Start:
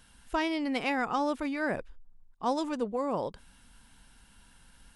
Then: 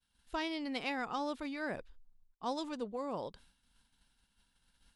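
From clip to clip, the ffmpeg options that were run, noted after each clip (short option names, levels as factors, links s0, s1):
-af "agate=range=0.0224:threshold=0.00355:ratio=3:detection=peak,equalizer=f=4000:w=1.7:g=7.5,volume=0.398"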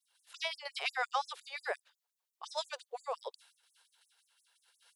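-af "afftfilt=real='re*gte(b*sr/1024,380*pow(6400/380,0.5+0.5*sin(2*PI*5.7*pts/sr)))':imag='im*gte(b*sr/1024,380*pow(6400/380,0.5+0.5*sin(2*PI*5.7*pts/sr)))':win_size=1024:overlap=0.75,volume=2.11"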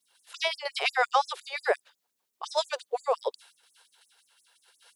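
-af "equalizer=f=280:w=0.74:g=10.5,volume=2.37"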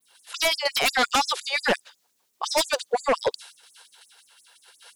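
-af "adynamicequalizer=threshold=0.00398:dfrequency=6200:dqfactor=0.88:tfrequency=6200:tqfactor=0.88:attack=5:release=100:ratio=0.375:range=3:mode=boostabove:tftype=bell,aeval=exprs='0.376*sin(PI/2*3.98*val(0)/0.376)':c=same,volume=0.447"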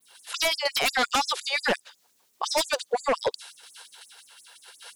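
-af "acompressor=threshold=0.0126:ratio=1.5,volume=1.68"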